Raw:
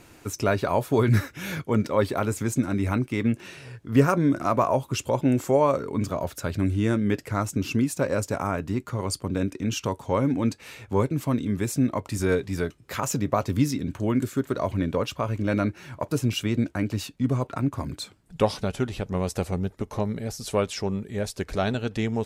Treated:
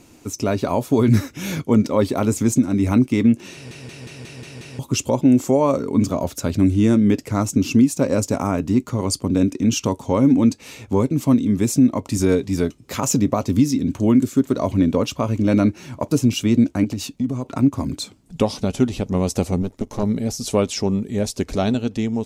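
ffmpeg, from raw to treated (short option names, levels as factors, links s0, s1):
-filter_complex "[0:a]asettb=1/sr,asplit=3[s0][s1][s2];[s0]atrim=end=16.844[s3];[s1]atrim=start=16.84:end=17.57,asetpts=PTS-STARTPTS,afade=t=in:d=0.004:c=qsin,afade=t=out:st=0.726:d=0.004:c=qsin,acompressor=threshold=0.0355:ratio=5:attack=3.2:release=140:knee=1:detection=peak[s4];[s2]atrim=start=17.566[s5];[s3][s4]acrossfade=d=0.004:c1=hsin:c2=qsin[s6];[s6][s5]acrossfade=d=0.004:c1=qsin:c2=hsin,asettb=1/sr,asplit=3[s7][s8][s9];[s7]atrim=end=19.624[s10];[s8]atrim=start=19.62:end=20.03,asetpts=PTS-STARTPTS,afade=t=in:d=0.004:c=qsin,afade=t=out:st=0.406:d=0.004:c=qsin,aeval=exprs='if(lt(val(0),0),0.251*val(0),val(0))':c=same[s11];[s9]atrim=start=20.026[s12];[s10][s11]acrossfade=d=0.004:c1=hsin:c2=qsin[s13];[s13][s12]acrossfade=d=0.004:c1=qsin:c2=hsin,asplit=8[s14][s15][s16][s17][s18][s19][s20][s21];[s14]atrim=end=3.712[s22];[s15]atrim=start=3.528:end=3.712[s23];[s16]atrim=start=3.528:end=3.712[s24];[s17]atrim=start=3.528:end=3.712[s25];[s18]atrim=start=3.528:end=3.712[s26];[s19]atrim=start=3.528:end=3.712[s27];[s20]atrim=start=3.528:end=3.712[s28];[s21]atrim=start=4.788[s29];[s22][s23]acrossfade=d=0.004:c1=hsin:c2=hsin[s30];[s30][s24]acrossfade=d=0.004:c1=hsin:c2=hsin[s31];[s31][s25]acrossfade=d=0.004:c1=hsin:c2=hsin[s32];[s32][s26]acrossfade=d=0.004:c1=hsin:c2=hsin[s33];[s33][s27]acrossfade=d=0.004:c1=hsin:c2=hsin[s34];[s34][s28]acrossfade=d=0.004:c1=hsin:c2=hsin[s35];[s35][s29]acrossfade=d=0.004:c1=hsin:c2=hsin,equalizer=f=250:t=o:w=0.67:g=8,equalizer=f=1600:t=o:w=0.67:g=-7,equalizer=f=6300:t=o:w=0.67:g=5,alimiter=limit=0.299:level=0:latency=1:release=312,dynaudnorm=f=100:g=13:m=1.78"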